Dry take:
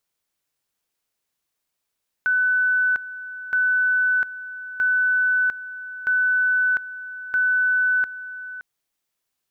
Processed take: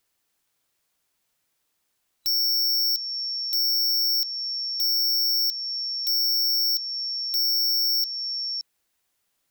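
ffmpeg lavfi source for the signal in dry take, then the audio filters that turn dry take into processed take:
-f lavfi -i "aevalsrc='pow(10,(-16.5-15*gte(mod(t,1.27),0.7))/20)*sin(2*PI*1500*t)':duration=6.35:sample_rate=44100"
-filter_complex "[0:a]afftfilt=real='real(if(lt(b,736),b+184*(1-2*mod(floor(b/184),2)),b),0)':imag='imag(if(lt(b,736),b+184*(1-2*mod(floor(b/184),2)),b),0)':win_size=2048:overlap=0.75,asplit=2[link_01][link_02];[link_02]acompressor=threshold=-32dB:ratio=4,volume=-1dB[link_03];[link_01][link_03]amix=inputs=2:normalize=0,aeval=exprs='0.119*(abs(mod(val(0)/0.119+3,4)-2)-1)':channel_layout=same"

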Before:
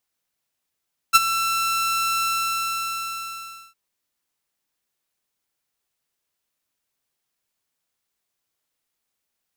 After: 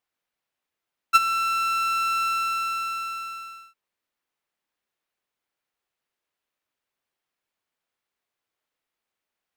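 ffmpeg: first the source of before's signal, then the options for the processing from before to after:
-f lavfi -i "aevalsrc='0.562*(2*mod(1340*t,1)-1)':duration=2.61:sample_rate=44100,afade=type=in:duration=0.026,afade=type=out:start_time=0.026:duration=0.027:silence=0.224,afade=type=out:start_time=1.1:duration=1.51"
-af "bass=frequency=250:gain=-6,treble=frequency=4000:gain=-11"

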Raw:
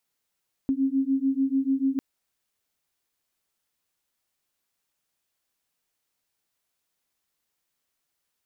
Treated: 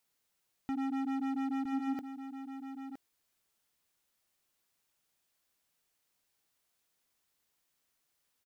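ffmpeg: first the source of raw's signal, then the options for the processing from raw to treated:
-f lavfi -i "aevalsrc='0.0596*(sin(2*PI*266*t)+sin(2*PI*272.8*t))':duration=1.3:sample_rate=44100"
-filter_complex "[0:a]asoftclip=type=hard:threshold=-33dB,asplit=2[link_01][link_02];[link_02]aecho=0:1:965:0.335[link_03];[link_01][link_03]amix=inputs=2:normalize=0"

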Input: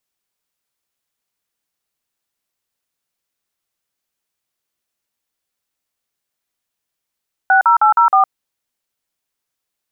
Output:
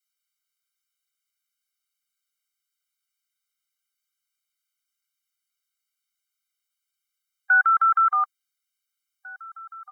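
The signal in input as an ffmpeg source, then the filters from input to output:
-f lavfi -i "aevalsrc='0.299*clip(min(mod(t,0.157),0.111-mod(t,0.157))/0.002,0,1)*(eq(floor(t/0.157),0)*(sin(2*PI*770*mod(t,0.157))+sin(2*PI*1477*mod(t,0.157)))+eq(floor(t/0.157),1)*(sin(2*PI*941*mod(t,0.157))+sin(2*PI*1336*mod(t,0.157)))+eq(floor(t/0.157),2)*(sin(2*PI*852*mod(t,0.157))+sin(2*PI*1336*mod(t,0.157)))+eq(floor(t/0.157),3)*(sin(2*PI*941*mod(t,0.157))+sin(2*PI*1336*mod(t,0.157)))+eq(floor(t/0.157),4)*(sin(2*PI*770*mod(t,0.157))+sin(2*PI*1209*mod(t,0.157))))':duration=0.785:sample_rate=44100"
-filter_complex "[0:a]highpass=frequency=1400:width=0.5412,highpass=frequency=1400:width=1.3066,asplit=2[link_01][link_02];[link_02]adelay=1749,volume=-16dB,highshelf=frequency=4000:gain=-39.4[link_03];[link_01][link_03]amix=inputs=2:normalize=0,afftfilt=real='re*eq(mod(floor(b*sr/1024/400),2),1)':imag='im*eq(mod(floor(b*sr/1024/400),2),1)':win_size=1024:overlap=0.75"

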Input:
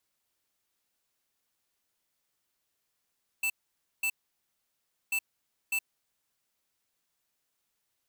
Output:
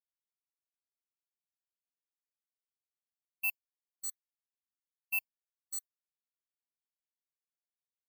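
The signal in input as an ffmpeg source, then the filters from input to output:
-f lavfi -i "aevalsrc='0.0355*(2*lt(mod(2650*t,1),0.5)-1)*clip(min(mod(mod(t,1.69),0.6),0.07-mod(mod(t,1.69),0.6))/0.005,0,1)*lt(mod(t,1.69),1.2)':duration=3.38:sample_rate=44100"
-af "agate=range=-33dB:threshold=-29dB:ratio=3:detection=peak,highshelf=frequency=10000:gain=10,afftfilt=real='re*gt(sin(2*PI*1.2*pts/sr)*(1-2*mod(floor(b*sr/1024/1100),2)),0)':imag='im*gt(sin(2*PI*1.2*pts/sr)*(1-2*mod(floor(b*sr/1024/1100),2)),0)':win_size=1024:overlap=0.75"

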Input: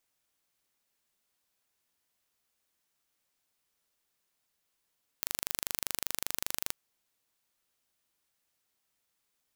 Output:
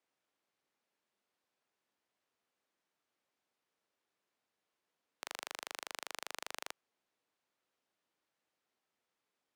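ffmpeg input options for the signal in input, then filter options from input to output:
-f lavfi -i "aevalsrc='0.596*eq(mod(n,1757),0)':duration=1.48:sample_rate=44100"
-filter_complex "[0:a]highpass=350,aemphasis=mode=reproduction:type=riaa,acrossover=split=500|920[link_01][link_02][link_03];[link_01]alimiter=level_in=27.5dB:limit=-24dB:level=0:latency=1,volume=-27.5dB[link_04];[link_04][link_02][link_03]amix=inputs=3:normalize=0"

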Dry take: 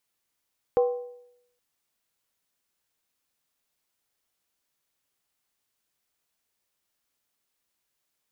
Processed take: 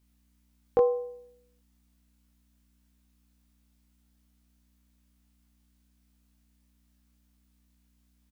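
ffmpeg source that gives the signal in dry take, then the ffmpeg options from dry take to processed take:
-f lavfi -i "aevalsrc='0.158*pow(10,-3*t/0.78)*sin(2*PI*489*t)+0.0501*pow(10,-3*t/0.618)*sin(2*PI*779.5*t)+0.0158*pow(10,-3*t/0.534)*sin(2*PI*1044.5*t)+0.00501*pow(10,-3*t/0.515)*sin(2*PI*1122.7*t)+0.00158*pow(10,-3*t/0.479)*sin(2*PI*1297.3*t)':duration=0.82:sample_rate=44100"
-filter_complex "[0:a]aeval=exprs='val(0)+0.000398*(sin(2*PI*60*n/s)+sin(2*PI*2*60*n/s)/2+sin(2*PI*3*60*n/s)/3+sin(2*PI*4*60*n/s)/4+sin(2*PI*5*60*n/s)/5)':channel_layout=same,asplit=2[link_01][link_02];[link_02]adelay=21,volume=-2dB[link_03];[link_01][link_03]amix=inputs=2:normalize=0"

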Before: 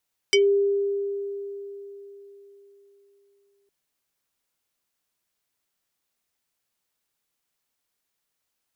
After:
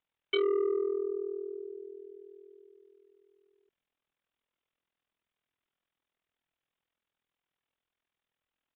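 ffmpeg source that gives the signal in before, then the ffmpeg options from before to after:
-f lavfi -i "aevalsrc='0.2*pow(10,-3*t/3.88)*sin(2*PI*400*t+2.4*pow(10,-3*t/0.14)*sin(2*PI*6.67*400*t))':duration=3.36:sample_rate=44100"
-af "tremolo=f=41:d=0.889,aresample=8000,asoftclip=type=tanh:threshold=-23dB,aresample=44100"

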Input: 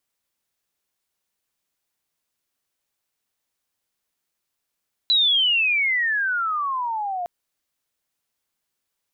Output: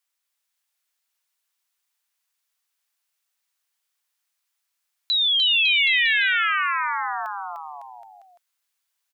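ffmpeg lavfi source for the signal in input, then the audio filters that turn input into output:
-f lavfi -i "aevalsrc='pow(10,(-14.5-10*t/2.16)/20)*sin(2*PI*4000*2.16/log(690/4000)*(exp(log(690/4000)*t/2.16)-1))':duration=2.16:sample_rate=44100"
-filter_complex "[0:a]highpass=1000,aecho=1:1:300|555|771.8|956|1113:0.631|0.398|0.251|0.158|0.1,acrossover=split=4100[link_01][link_02];[link_02]acompressor=threshold=-34dB:ratio=4:attack=1:release=60[link_03];[link_01][link_03]amix=inputs=2:normalize=0"

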